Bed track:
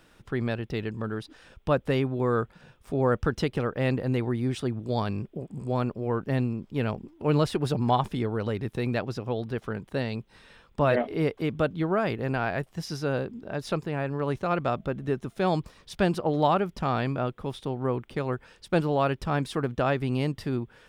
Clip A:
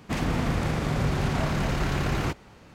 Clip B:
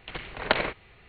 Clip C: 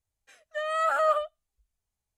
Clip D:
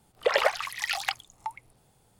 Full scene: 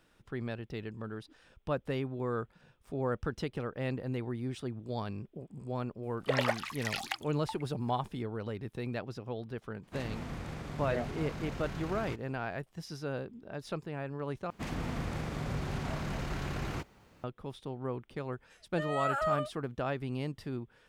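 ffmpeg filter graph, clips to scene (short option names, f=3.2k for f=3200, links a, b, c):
-filter_complex "[1:a]asplit=2[a][b];[0:a]volume=-9dB[c];[b]acrusher=bits=10:mix=0:aa=0.000001[d];[c]asplit=2[e][f];[e]atrim=end=14.504[g];[d]atrim=end=2.74,asetpts=PTS-STARTPTS,volume=-10dB[h];[f]atrim=start=17.236[i];[4:a]atrim=end=2.19,asetpts=PTS-STARTPTS,volume=-7dB,afade=t=in:d=0.004:c=hsin,afade=t=out:st=2.186:d=0.004:c=hsin,adelay=6030[j];[a]atrim=end=2.74,asetpts=PTS-STARTPTS,volume=-14.5dB,afade=t=in:d=0.004:c=hsin,afade=t=out:st=2.736:d=0.004:c=hsin,adelay=9830[k];[3:a]atrim=end=2.17,asetpts=PTS-STARTPTS,volume=-7dB,afade=t=in:d=0.004:c=hsin,afade=t=out:st=2.166:d=0.004:c=hsin,adelay=18220[l];[g][h]acrossfade=d=0.004:c1=hsin:c2=hsin[m];[m][i]acrossfade=d=0.004:c1=hsin:c2=hsin[n];[n][j][k][l]amix=inputs=4:normalize=0"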